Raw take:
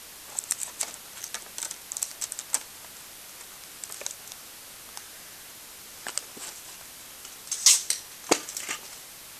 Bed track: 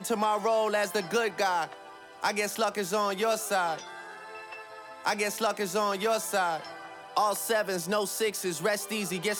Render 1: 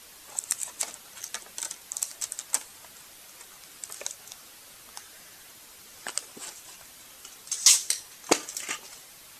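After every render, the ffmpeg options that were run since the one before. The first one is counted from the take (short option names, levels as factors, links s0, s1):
-af "afftdn=nr=6:nf=-46"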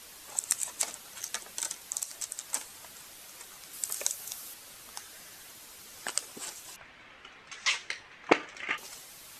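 -filter_complex "[0:a]asplit=3[s0][s1][s2];[s0]afade=t=out:st=1.99:d=0.02[s3];[s1]acompressor=threshold=0.0141:ratio=1.5:attack=3.2:release=140:knee=1:detection=peak,afade=t=in:st=1.99:d=0.02,afade=t=out:st=2.55:d=0.02[s4];[s2]afade=t=in:st=2.55:d=0.02[s5];[s3][s4][s5]amix=inputs=3:normalize=0,asettb=1/sr,asplit=3[s6][s7][s8];[s6]atrim=end=3.734[s9];[s7]atrim=start=3.73:end=4.54,asetpts=PTS-STARTPTS,afade=t=in:d=0.004:c=qsin,afade=t=out:st=0.806:d=0.004:c=qsin,highshelf=f=8000:g=11[s10];[s8]atrim=start=4.536[s11];[s9][s10]acrossfade=d=0.004:c1=hsin:c2=qsin[s12];[s12][s11]acrossfade=d=0.004:c1=qsin:c2=hsin,asettb=1/sr,asplit=3[s13][s14][s15];[s13]atrim=end=6.764[s16];[s14]atrim=start=6.76:end=8.78,asetpts=PTS-STARTPTS,afade=t=in:d=0.004:c=qsin,afade=t=out:st=2.016:d=0.004:c=qsin,lowpass=f=2200:t=q:w=1.7[s17];[s15]atrim=start=8.776[s18];[s16][s17]acrossfade=d=0.004:c1=hsin:c2=qsin[s19];[s19][s18]acrossfade=d=0.004:c1=qsin:c2=hsin"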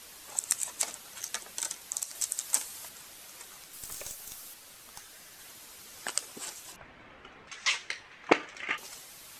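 -filter_complex "[0:a]asettb=1/sr,asplit=3[s0][s1][s2];[s0]atrim=end=2.154[s3];[s1]atrim=start=2.15:end=2.89,asetpts=PTS-STARTPTS,afade=t=in:d=0.004:c=qsin,afade=t=out:st=0.736:d=0.004:c=qsin,highshelf=f=4200:g=7[s4];[s2]atrim=start=2.886[s5];[s3][s4]acrossfade=d=0.004:c1=hsin:c2=qsin[s6];[s6][s5]acrossfade=d=0.004:c1=qsin:c2=hsin,asettb=1/sr,asplit=3[s7][s8][s9];[s7]atrim=end=3.634[s10];[s8]atrim=start=3.63:end=5.39,asetpts=PTS-STARTPTS,afade=t=in:d=0.004:c=qsin,afade=t=out:st=1.756:d=0.004:c=qsin,aeval=exprs='(tanh(44.7*val(0)+0.5)-tanh(0.5))/44.7':c=same[s11];[s9]atrim=start=5.386[s12];[s10][s11]acrossfade=d=0.004:c1=hsin:c2=qsin[s13];[s13][s12]acrossfade=d=0.004:c1=qsin:c2=hsin,asettb=1/sr,asplit=3[s14][s15][s16];[s14]atrim=end=6.724[s17];[s15]atrim=start=6.72:end=7.48,asetpts=PTS-STARTPTS,afade=t=in:d=0.004:c=qsin,afade=t=out:st=0.756:d=0.004:c=qsin,tiltshelf=f=1400:g=6[s18];[s16]atrim=start=7.476[s19];[s17][s18]acrossfade=d=0.004:c1=hsin:c2=qsin[s20];[s20][s19]acrossfade=d=0.004:c1=qsin:c2=hsin"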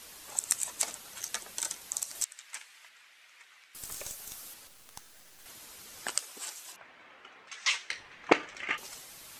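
-filter_complex "[0:a]asettb=1/sr,asplit=3[s0][s1][s2];[s0]atrim=end=2.244[s3];[s1]atrim=start=2.24:end=3.75,asetpts=PTS-STARTPTS,afade=t=in:d=0.004:c=qsin,afade=t=out:st=1.506:d=0.004:c=qsin,bandpass=f=2100:t=q:w=1.8[s4];[s2]atrim=start=3.746[s5];[s3][s4]acrossfade=d=0.004:c1=hsin:c2=qsin[s6];[s6][s5]acrossfade=d=0.004:c1=qsin:c2=hsin,asettb=1/sr,asplit=3[s7][s8][s9];[s7]atrim=end=4.674[s10];[s8]atrim=start=4.67:end=5.46,asetpts=PTS-STARTPTS,afade=t=in:d=0.004:c=qsin,afade=t=out:st=0.786:d=0.004:c=qsin,acrusher=bits=7:dc=4:mix=0:aa=0.000001[s11];[s9]atrim=start=5.456[s12];[s10][s11]acrossfade=d=0.004:c1=hsin:c2=qsin[s13];[s13][s12]acrossfade=d=0.004:c1=qsin:c2=hsin,asettb=1/sr,asplit=3[s14][s15][s16];[s14]atrim=end=6.174[s17];[s15]atrim=start=6.17:end=7.92,asetpts=PTS-STARTPTS,afade=t=in:d=0.004:c=qsin,afade=t=out:st=1.746:d=0.004:c=qsin,highpass=f=710:p=1[s18];[s16]atrim=start=7.916[s19];[s17][s18]acrossfade=d=0.004:c1=hsin:c2=qsin[s20];[s20][s19]acrossfade=d=0.004:c1=qsin:c2=hsin"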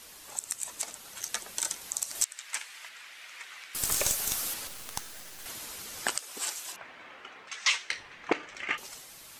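-af "dynaudnorm=f=590:g=5:m=5.31,alimiter=limit=0.266:level=0:latency=1:release=218"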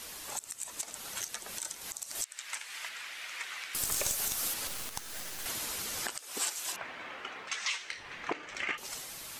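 -filter_complex "[0:a]asplit=2[s0][s1];[s1]acompressor=threshold=0.0126:ratio=6,volume=0.794[s2];[s0][s2]amix=inputs=2:normalize=0,alimiter=limit=0.0891:level=0:latency=1:release=190"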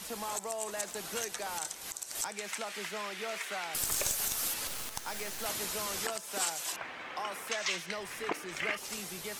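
-filter_complex "[1:a]volume=0.224[s0];[0:a][s0]amix=inputs=2:normalize=0"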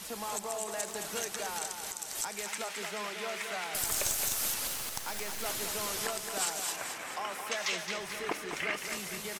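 -af "aecho=1:1:218|436|654|872|1090|1308|1526:0.447|0.241|0.13|0.0703|0.038|0.0205|0.0111"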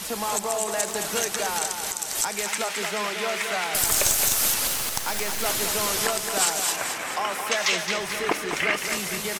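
-af "volume=3.16"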